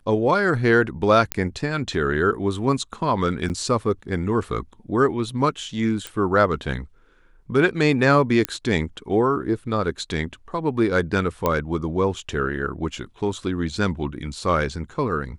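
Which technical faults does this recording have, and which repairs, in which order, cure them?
1.32 s: pop -4 dBFS
3.49–3.50 s: dropout 8.7 ms
6.07 s: pop
8.45 s: pop -6 dBFS
11.46 s: pop -8 dBFS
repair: de-click; interpolate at 3.49 s, 8.7 ms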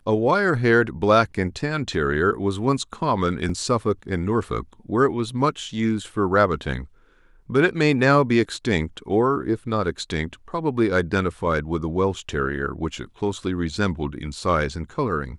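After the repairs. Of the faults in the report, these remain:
nothing left

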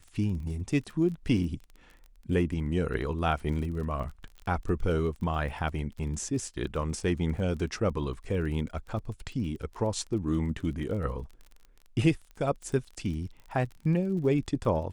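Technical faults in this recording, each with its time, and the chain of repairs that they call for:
crackle 29 per s -38 dBFS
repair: de-click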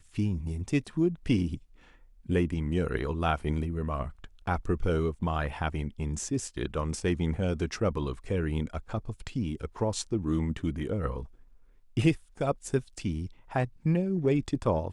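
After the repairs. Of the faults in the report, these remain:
nothing left

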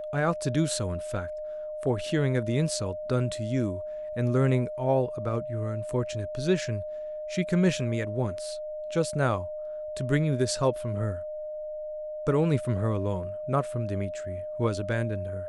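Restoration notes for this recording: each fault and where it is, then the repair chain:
whine 610 Hz -33 dBFS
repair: band-stop 610 Hz, Q 30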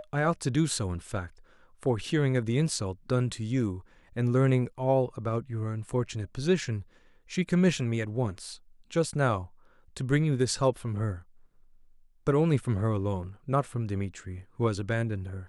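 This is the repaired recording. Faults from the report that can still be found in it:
nothing left

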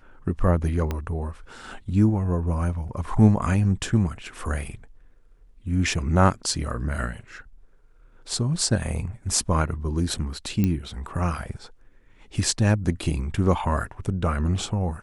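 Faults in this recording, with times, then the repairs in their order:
0.91 s: pop -14 dBFS
10.64 s: pop -11 dBFS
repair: de-click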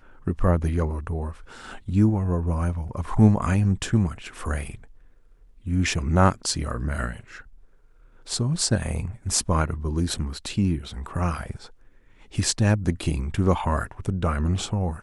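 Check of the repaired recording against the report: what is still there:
0.91 s: pop

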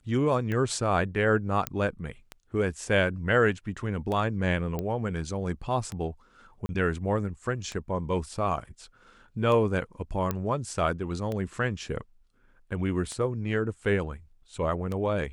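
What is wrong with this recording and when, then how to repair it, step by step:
tick 33 1/3 rpm -20 dBFS
1.67 s: pop -10 dBFS
4.79 s: pop -18 dBFS
6.66–6.69 s: dropout 30 ms
10.31 s: pop -14 dBFS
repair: de-click; interpolate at 6.66 s, 30 ms

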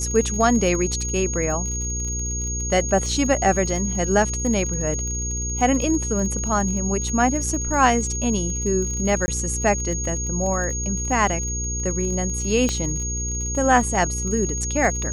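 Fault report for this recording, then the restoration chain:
crackle 40 per s -29 dBFS
hum 60 Hz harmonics 8 -28 dBFS
whine 6.6 kHz -27 dBFS
9.26–9.28 s: dropout 20 ms
12.69 s: pop -10 dBFS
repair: de-click; de-hum 60 Hz, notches 8; band-stop 6.6 kHz, Q 30; interpolate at 9.26 s, 20 ms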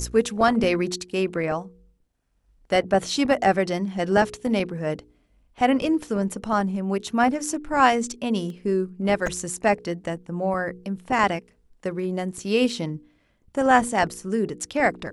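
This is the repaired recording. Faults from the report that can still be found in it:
12.69 s: pop

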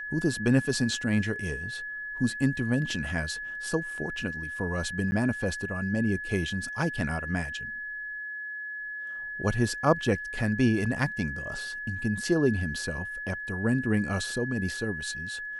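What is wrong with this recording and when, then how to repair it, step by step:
whine 1.7 kHz -34 dBFS
5.11–5.12 s: dropout 10 ms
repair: band-stop 1.7 kHz, Q 30; interpolate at 5.11 s, 10 ms

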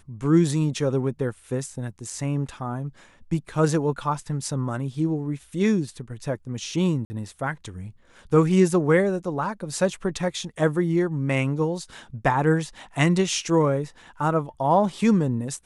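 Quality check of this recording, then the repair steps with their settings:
7.05–7.10 s: dropout 50 ms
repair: interpolate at 7.05 s, 50 ms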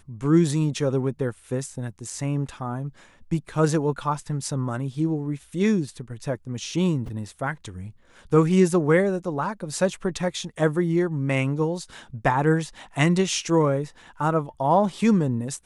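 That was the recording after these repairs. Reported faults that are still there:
nothing left

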